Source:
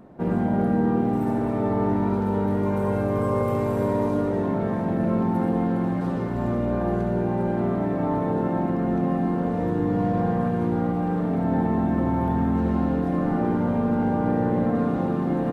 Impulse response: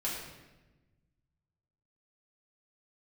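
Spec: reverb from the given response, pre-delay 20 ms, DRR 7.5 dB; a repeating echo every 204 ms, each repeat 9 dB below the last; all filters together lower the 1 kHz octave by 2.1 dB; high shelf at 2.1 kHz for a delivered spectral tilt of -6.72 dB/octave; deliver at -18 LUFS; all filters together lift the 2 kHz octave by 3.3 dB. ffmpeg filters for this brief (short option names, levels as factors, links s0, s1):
-filter_complex "[0:a]equalizer=f=1000:t=o:g=-3.5,equalizer=f=2000:t=o:g=8,highshelf=f=2100:g=-4.5,aecho=1:1:204|408|612|816:0.355|0.124|0.0435|0.0152,asplit=2[s0][s1];[1:a]atrim=start_sample=2205,adelay=20[s2];[s1][s2]afir=irnorm=-1:irlink=0,volume=0.251[s3];[s0][s3]amix=inputs=2:normalize=0,volume=1.68"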